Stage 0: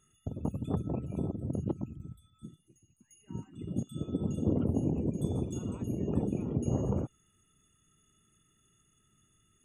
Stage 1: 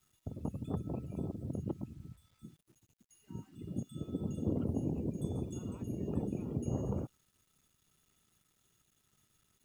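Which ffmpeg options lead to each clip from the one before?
-af "acrusher=bits=10:mix=0:aa=0.000001,volume=-5dB"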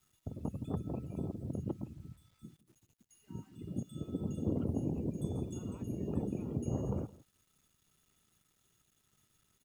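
-af "aecho=1:1:166:0.0944"

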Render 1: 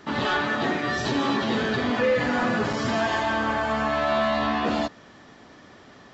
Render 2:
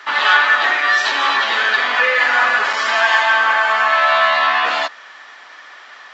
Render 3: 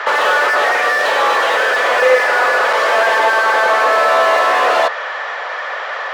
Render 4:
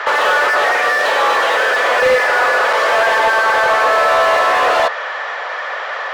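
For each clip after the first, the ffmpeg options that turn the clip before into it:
-af "highpass=880,equalizer=f=1.8k:t=o:w=2.8:g=11.5,volume=4dB"
-filter_complex "[0:a]asplit=2[a][b];[b]highpass=f=720:p=1,volume=32dB,asoftclip=type=tanh:threshold=-1dB[c];[a][c]amix=inputs=2:normalize=0,lowpass=f=1.3k:p=1,volume=-6dB,highpass=f=510:t=q:w=4.5,volume=-5.5dB"
-af "asoftclip=type=hard:threshold=-7.5dB"

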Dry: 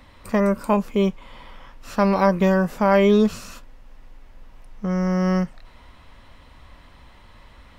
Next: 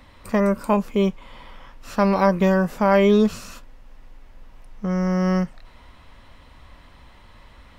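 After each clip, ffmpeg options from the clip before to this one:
-af anull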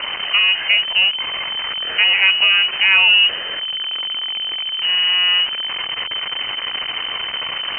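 -af "aeval=exprs='val(0)+0.5*0.0944*sgn(val(0))':c=same,acrusher=bits=5:mode=log:mix=0:aa=0.000001,lowpass=f=2.6k:t=q:w=0.5098,lowpass=f=2.6k:t=q:w=0.6013,lowpass=f=2.6k:t=q:w=0.9,lowpass=f=2.6k:t=q:w=2.563,afreqshift=-3100,volume=1.5dB"

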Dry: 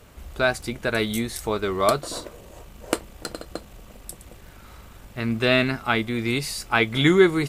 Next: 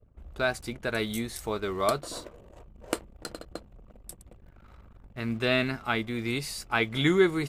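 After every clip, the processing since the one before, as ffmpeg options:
-af "anlmdn=0.0398,volume=-6dB"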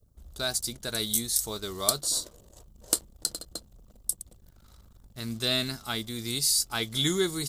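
-af "bass=f=250:g=4,treble=f=4k:g=-3,aexciter=amount=13.2:drive=4.4:freq=3.7k,volume=-6.5dB"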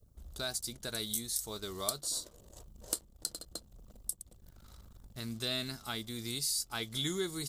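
-af "acompressor=threshold=-47dB:ratio=1.5"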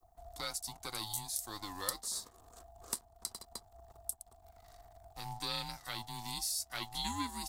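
-af "afreqshift=270,aeval=exprs='val(0)*sin(2*PI*370*n/s)':c=same"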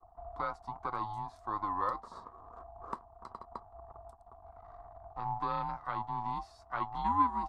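-af "lowpass=f=1.1k:t=q:w=3.8,volume=3dB"

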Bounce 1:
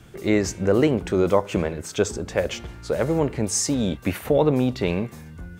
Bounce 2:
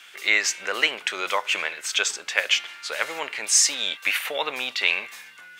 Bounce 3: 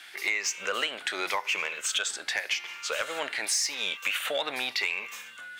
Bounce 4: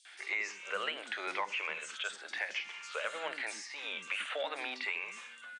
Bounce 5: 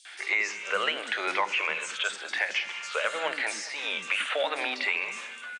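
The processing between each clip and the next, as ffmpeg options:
-af "highpass=1.3k,equalizer=f=2.7k:t=o:w=1.7:g=10.5,volume=3.5dB"
-af "afftfilt=real='re*pow(10,7/40*sin(2*PI*(0.79*log(max(b,1)*sr/1024/100)/log(2)-(0.88)*(pts-256)/sr)))':imag='im*pow(10,7/40*sin(2*PI*(0.79*log(max(b,1)*sr/1024/100)/log(2)-(0.88)*(pts-256)/sr)))':win_size=1024:overlap=0.75,acompressor=threshold=-24dB:ratio=6,asoftclip=type=tanh:threshold=-17dB"
-filter_complex "[0:a]acrossover=split=3100[a][b];[b]acompressor=threshold=-41dB:ratio=4:attack=1:release=60[c];[a][c]amix=inputs=2:normalize=0,acrossover=split=330|4800[d][e][f];[e]adelay=50[g];[d]adelay=140[h];[h][g][f]amix=inputs=3:normalize=0,afftfilt=real='re*between(b*sr/4096,160,10000)':imag='im*between(b*sr/4096,160,10000)':win_size=4096:overlap=0.75,volume=-5dB"
-af "aecho=1:1:208|416|624|832:0.141|0.072|0.0367|0.0187,volume=8.5dB"

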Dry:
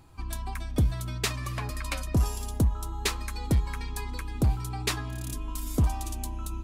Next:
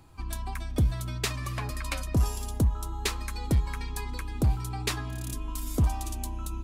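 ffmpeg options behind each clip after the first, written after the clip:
-filter_complex "[0:a]acrossover=split=160[a][b];[b]acompressor=threshold=-26dB:ratio=2[c];[a][c]amix=inputs=2:normalize=0"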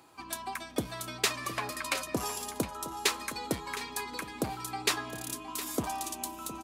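-af "highpass=330,aecho=1:1:713:0.211,volume=3dB"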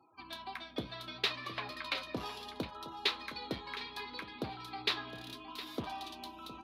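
-af "afftfilt=real='re*gte(hypot(re,im),0.002)':imag='im*gte(hypot(re,im),0.002)':win_size=1024:overlap=0.75,flanger=delay=7.9:depth=9.2:regen=-67:speed=0.68:shape=triangular,highshelf=f=5.5k:t=q:w=3:g=-13,volume=-2.5dB"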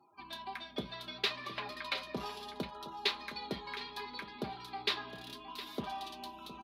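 -af "bandreject=f=1.3k:w=28,aecho=1:1:5:0.49,volume=-1dB"

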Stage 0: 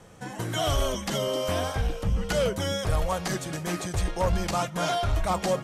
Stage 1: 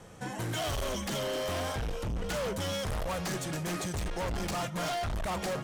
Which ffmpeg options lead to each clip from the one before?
-af "asoftclip=type=hard:threshold=-31dB"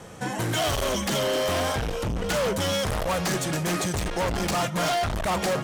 -af "lowshelf=f=72:g=-7.5,volume=8.5dB"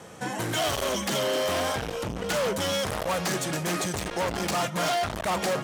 -af "highpass=f=160:p=1,volume=-1dB"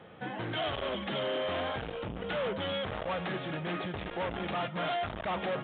-af "bandreject=f=1k:w=19,aresample=8000,aresample=44100,volume=-6dB"

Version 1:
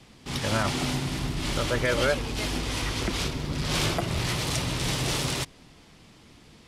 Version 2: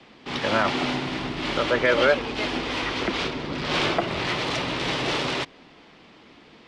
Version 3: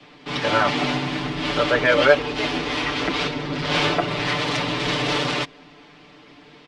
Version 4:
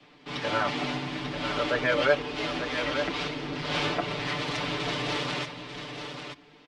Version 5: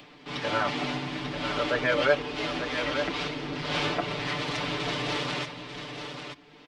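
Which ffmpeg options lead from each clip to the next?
-filter_complex "[0:a]lowpass=7k,acrossover=split=220 4100:gain=0.158 1 0.158[a][b][c];[a][b][c]amix=inputs=3:normalize=0,volume=6dB"
-af "aecho=1:1:6.8:1"
-af "aecho=1:1:891:0.398,volume=-8dB"
-af "acompressor=mode=upward:threshold=-45dB:ratio=2.5"

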